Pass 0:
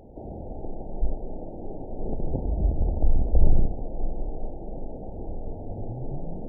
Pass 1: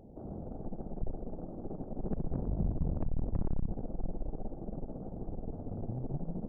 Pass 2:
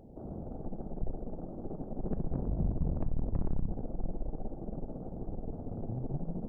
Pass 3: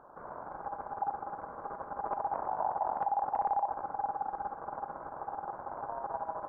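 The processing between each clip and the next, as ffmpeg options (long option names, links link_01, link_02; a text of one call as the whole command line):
ffmpeg -i in.wav -af "aeval=exprs='(tanh(17.8*val(0)+0.75)-tanh(0.75))/17.8':channel_layout=same,equalizer=frequency=180:width_type=o:width=1.5:gain=8.5,volume=-4.5dB" out.wav
ffmpeg -i in.wav -af "bandreject=frequency=99.87:width_type=h:width=4,bandreject=frequency=199.74:width_type=h:width=4,bandreject=frequency=299.61:width_type=h:width=4,bandreject=frequency=399.48:width_type=h:width=4,bandreject=frequency=499.35:width_type=h:width=4,bandreject=frequency=599.22:width_type=h:width=4,bandreject=frequency=699.09:width_type=h:width=4,bandreject=frequency=798.96:width_type=h:width=4,bandreject=frequency=898.83:width_type=h:width=4,bandreject=frequency=998.7:width_type=h:width=4,bandreject=frequency=1098.57:width_type=h:width=4,bandreject=frequency=1198.44:width_type=h:width=4,bandreject=frequency=1298.31:width_type=h:width=4,bandreject=frequency=1398.18:width_type=h:width=4,bandreject=frequency=1498.05:width_type=h:width=4,bandreject=frequency=1597.92:width_type=h:width=4,bandreject=frequency=1697.79:width_type=h:width=4,bandreject=frequency=1797.66:width_type=h:width=4,bandreject=frequency=1897.53:width_type=h:width=4,volume=1dB" out.wav
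ffmpeg -i in.wav -af "aeval=exprs='val(0)*sin(2*PI*810*n/s)':channel_layout=same" out.wav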